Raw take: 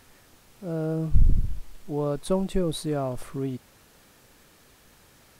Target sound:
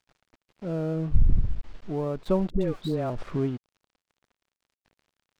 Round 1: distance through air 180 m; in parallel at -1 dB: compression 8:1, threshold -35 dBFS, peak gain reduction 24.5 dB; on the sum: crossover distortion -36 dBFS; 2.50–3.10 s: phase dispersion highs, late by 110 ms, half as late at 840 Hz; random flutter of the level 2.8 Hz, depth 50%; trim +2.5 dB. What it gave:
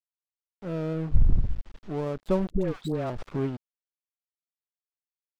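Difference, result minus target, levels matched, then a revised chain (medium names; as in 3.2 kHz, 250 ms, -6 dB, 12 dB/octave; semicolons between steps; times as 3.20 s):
crossover distortion: distortion +8 dB
distance through air 180 m; in parallel at -1 dB: compression 8:1, threshold -35 dBFS, peak gain reduction 24.5 dB; on the sum: crossover distortion -45 dBFS; 2.50–3.10 s: phase dispersion highs, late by 110 ms, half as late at 840 Hz; random flutter of the level 2.8 Hz, depth 50%; trim +2.5 dB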